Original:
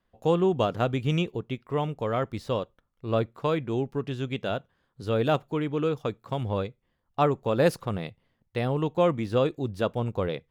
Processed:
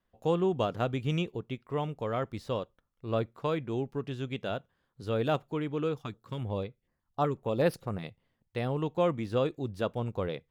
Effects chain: 6.01–8.04 stepped notch 8.1 Hz 500–7100 Hz; gain -4.5 dB

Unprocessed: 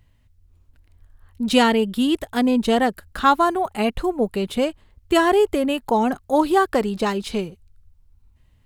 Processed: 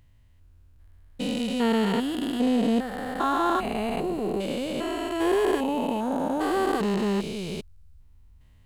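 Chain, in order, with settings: stepped spectrum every 0.4 s; vocal rider within 3 dB 2 s

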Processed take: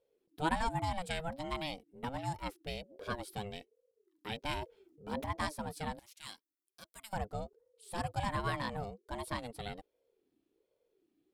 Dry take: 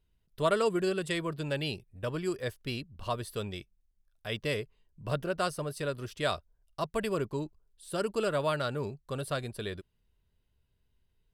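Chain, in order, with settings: 4.53–5.26 transient shaper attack -4 dB, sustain +8 dB; 5.99–7.13 pre-emphasis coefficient 0.97; ring modulator with a swept carrier 400 Hz, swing 25%, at 1.3 Hz; gain -2.5 dB

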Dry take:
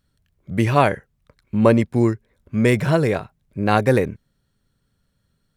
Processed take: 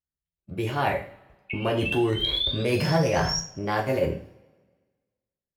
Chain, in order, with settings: expander -45 dBFS; reverse; compressor 6:1, threshold -25 dBFS, peak gain reduction 15.5 dB; reverse; painted sound rise, 1.5–3.39, 2200–5700 Hz -29 dBFS; formant shift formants +3 st; two-slope reverb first 0.4 s, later 1.5 s, from -22 dB, DRR -0.5 dB

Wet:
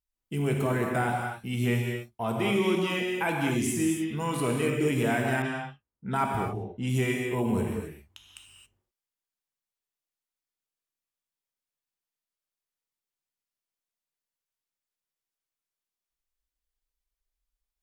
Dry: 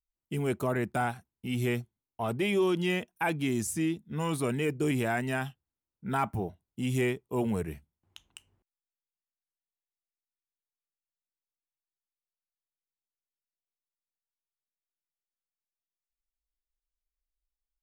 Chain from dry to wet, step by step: non-linear reverb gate 0.3 s flat, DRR -0.5 dB; 5.42–6.97 low-pass opened by the level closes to 1100 Hz, open at -25 dBFS; vibrato 0.44 Hz 6 cents

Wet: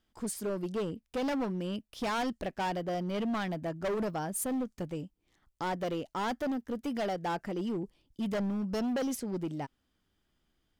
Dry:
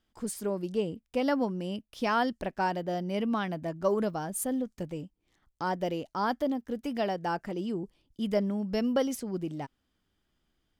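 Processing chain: hard clip -29 dBFS, distortion -9 dB

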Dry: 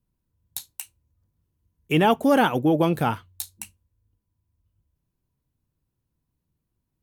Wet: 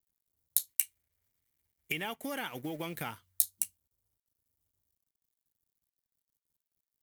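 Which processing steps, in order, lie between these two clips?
G.711 law mismatch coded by A; 0.68–3.11 bell 2200 Hz +12.5 dB 0.86 oct; compressor 16:1, threshold -26 dBFS, peak gain reduction 14.5 dB; pre-emphasis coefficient 0.8; notch 2600 Hz, Q 11; gain +5 dB

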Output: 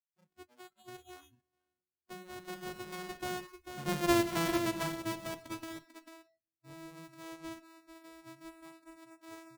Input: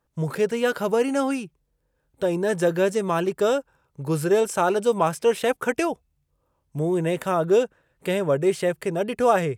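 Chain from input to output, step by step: sample sorter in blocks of 128 samples; Doppler pass-by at 4.12, 19 m/s, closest 6.5 m; echo 0.444 s -8 dB; reverb RT60 1.0 s, pre-delay 7 ms, DRR 12.5 dB; spectral noise reduction 26 dB; gain -8.5 dB

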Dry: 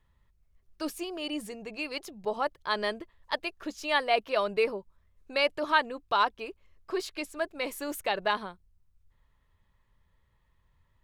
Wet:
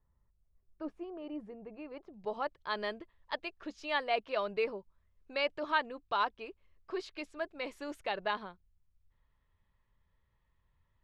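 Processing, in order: LPF 1100 Hz 12 dB/oct, from 2.14 s 4500 Hz; gain -6 dB

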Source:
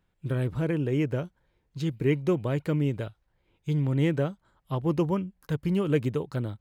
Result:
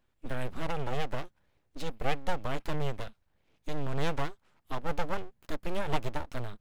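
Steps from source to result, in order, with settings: full-wave rectifier; dynamic EQ 300 Hz, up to -7 dB, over -46 dBFS, Q 0.83

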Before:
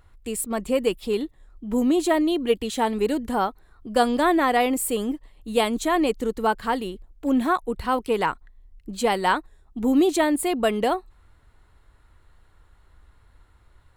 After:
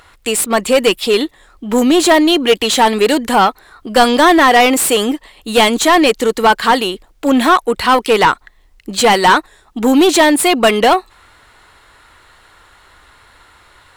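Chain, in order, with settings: high shelf 2500 Hz +9.5 dB; overdrive pedal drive 21 dB, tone 3400 Hz, clips at -3.5 dBFS; gain +3.5 dB

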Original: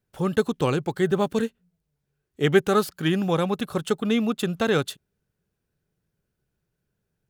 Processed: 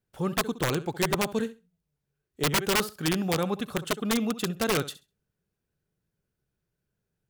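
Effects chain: flutter echo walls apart 11.4 m, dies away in 0.26 s; wrapped overs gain 14 dB; gain -4 dB

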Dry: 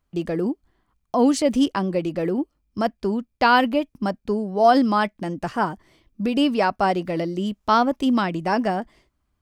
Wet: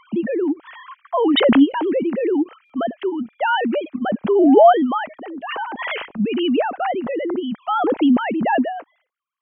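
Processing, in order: sine-wave speech; stuck buffer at 2.65, samples 256, times 7; backwards sustainer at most 23 dB/s

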